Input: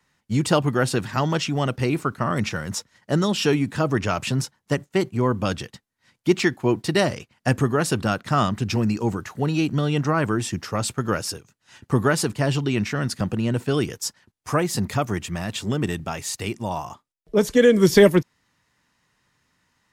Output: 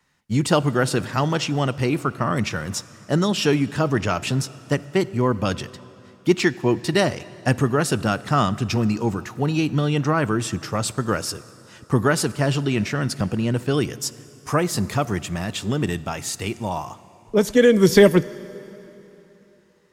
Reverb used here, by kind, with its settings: plate-style reverb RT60 3.4 s, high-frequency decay 0.8×, DRR 17.5 dB; trim +1 dB

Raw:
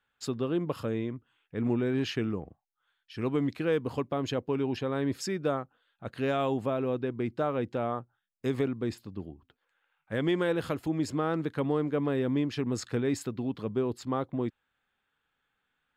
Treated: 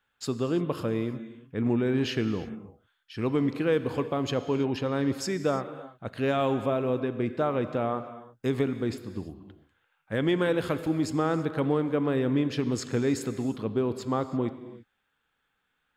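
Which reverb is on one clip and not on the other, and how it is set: gated-style reverb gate 360 ms flat, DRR 10.5 dB; trim +2.5 dB

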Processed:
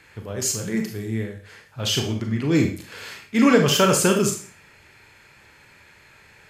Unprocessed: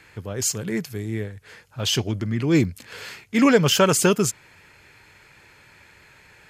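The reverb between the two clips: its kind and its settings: Schroeder reverb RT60 0.42 s, combs from 28 ms, DRR 3 dB; trim -1.5 dB

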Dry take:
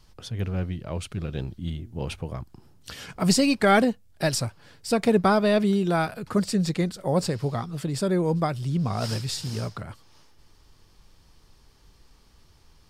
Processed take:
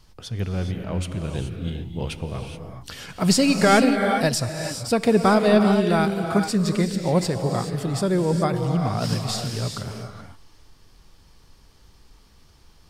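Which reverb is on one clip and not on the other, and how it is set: gated-style reverb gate 450 ms rising, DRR 4.5 dB; trim +2 dB

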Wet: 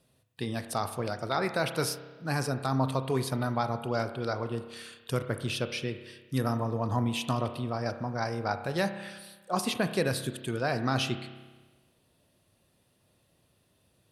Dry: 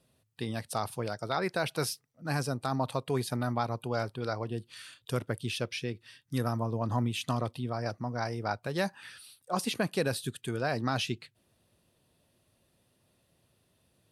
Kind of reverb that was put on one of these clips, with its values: spring tank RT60 1.3 s, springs 30 ms, chirp 50 ms, DRR 9 dB; trim +1.5 dB

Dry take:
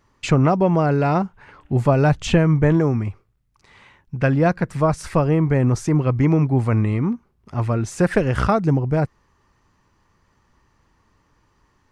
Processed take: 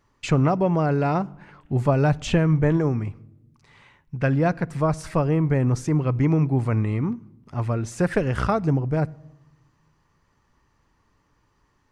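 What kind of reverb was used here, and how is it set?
simulated room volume 3800 m³, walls furnished, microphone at 0.32 m; trim -4 dB

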